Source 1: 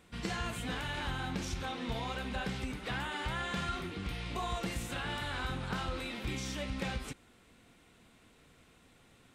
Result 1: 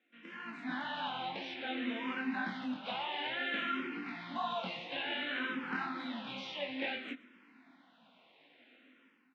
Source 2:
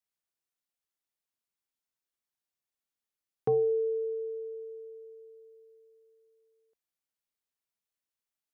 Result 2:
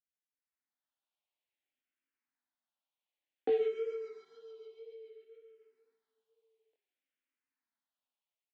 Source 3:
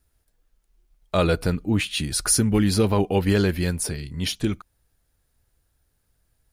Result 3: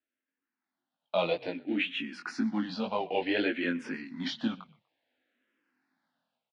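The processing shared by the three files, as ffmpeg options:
ffmpeg -i in.wav -filter_complex "[0:a]lowshelf=frequency=310:gain=-8.5,dynaudnorm=framelen=230:gausssize=5:maxgain=15dB,acrusher=bits=5:mode=log:mix=0:aa=0.000001,flanger=delay=17.5:depth=6:speed=2,highpass=frequency=220:width=0.5412,highpass=frequency=220:width=1.3066,equalizer=frequency=260:width_type=q:width=4:gain=9,equalizer=frequency=420:width_type=q:width=4:gain=-10,equalizer=frequency=1200:width_type=q:width=4:gain=-5,lowpass=frequency=3400:width=0.5412,lowpass=frequency=3400:width=1.3066,asplit=3[link_01][link_02][link_03];[link_02]adelay=122,afreqshift=-32,volume=-22dB[link_04];[link_03]adelay=244,afreqshift=-64,volume=-31.9dB[link_05];[link_01][link_04][link_05]amix=inputs=3:normalize=0,asplit=2[link_06][link_07];[link_07]afreqshift=-0.57[link_08];[link_06][link_08]amix=inputs=2:normalize=1,volume=-6dB" out.wav

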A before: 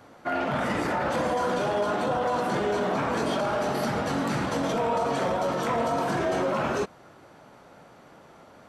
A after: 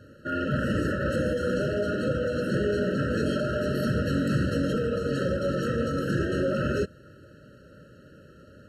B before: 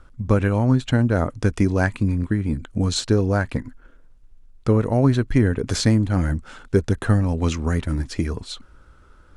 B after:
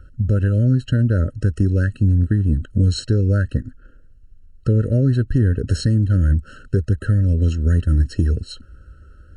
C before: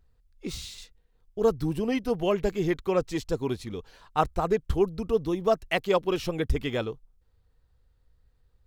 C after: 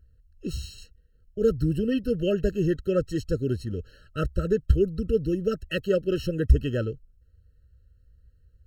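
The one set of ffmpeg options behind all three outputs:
ffmpeg -i in.wav -af "equalizer=frequency=74:width_type=o:width=2:gain=11.5,alimiter=limit=-7dB:level=0:latency=1:release=372,afftfilt=real='re*eq(mod(floor(b*sr/1024/640),2),0)':imag='im*eq(mod(floor(b*sr/1024/640),2),0)':win_size=1024:overlap=0.75" out.wav

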